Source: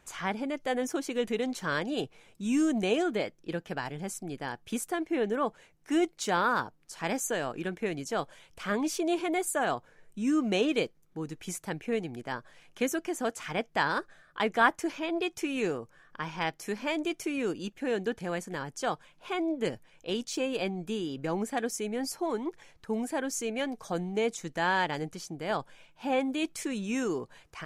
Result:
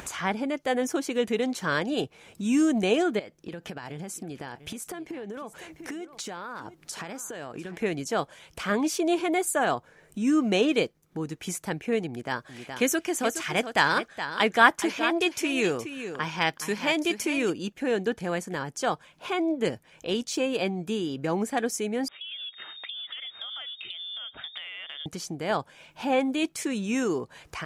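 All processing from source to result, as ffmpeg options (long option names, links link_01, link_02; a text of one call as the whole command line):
ffmpeg -i in.wav -filter_complex "[0:a]asettb=1/sr,asplit=3[link_01][link_02][link_03];[link_01]atrim=end=3.194[link_04];[link_02]atrim=start=3.19:end=7.77,asetpts=PTS-STARTPTS,afade=type=in:duration=0.004:curve=qsin,afade=type=out:start_time=4.576:duration=0.004:curve=qsin,acompressor=threshold=-40dB:ratio=16:attack=3.2:release=140:knee=1:detection=peak,aecho=1:1:696:0.15,atrim=end_sample=201978[link_05];[link_03]atrim=start=7.766[link_06];[link_04][link_05]acrossfade=duration=0.004:curve1=hsin:curve2=qsin[link_07];[link_07][link_06]acrossfade=duration=0.004:curve1=qsin:curve2=hsin,asettb=1/sr,asplit=3[link_08][link_09][link_10];[link_08]atrim=end=12.074[link_11];[link_09]atrim=start=12.07:end=17.5,asetpts=PTS-STARTPTS,afade=type=in:duration=0.004:curve=qsin,afade=type=out:start_time=5.426:duration=0.004:curve=qsin,aecho=1:1:420:0.282,atrim=end_sample=239463,adynamicequalizer=threshold=0.00794:dfrequency=1600:dqfactor=0.7:tfrequency=1600:tqfactor=0.7:attack=5:release=100:ratio=0.375:range=2.5:mode=boostabove:tftype=highshelf[link_12];[link_10]atrim=start=17.496[link_13];[link_11][link_12]acrossfade=duration=0.004:curve1=hsin:curve2=qsin[link_14];[link_14][link_13]acrossfade=duration=0.004:curve1=qsin:curve2=hsin,asettb=1/sr,asplit=3[link_15][link_16][link_17];[link_15]atrim=end=22.084[link_18];[link_16]atrim=start=22.08:end=25.06,asetpts=PTS-STARTPTS,afade=type=in:duration=0.004:curve=qsin,afade=type=out:start_time=2.976:duration=0.004:curve=qsin,lowpass=frequency=3100:width_type=q:width=0.5098,lowpass=frequency=3100:width_type=q:width=0.6013,lowpass=frequency=3100:width_type=q:width=0.9,lowpass=frequency=3100:width_type=q:width=2.563,afreqshift=-3700,acompressor=threshold=-43dB:ratio=12:attack=3.2:release=140:knee=1:detection=peak[link_19];[link_17]atrim=start=25.056[link_20];[link_18][link_19]acrossfade=duration=0.004:curve1=hsin:curve2=qsin[link_21];[link_21][link_20]acrossfade=duration=0.004:curve1=qsin:curve2=hsin,highpass=41,acompressor=mode=upward:threshold=-35dB:ratio=2.5,volume=4dB" out.wav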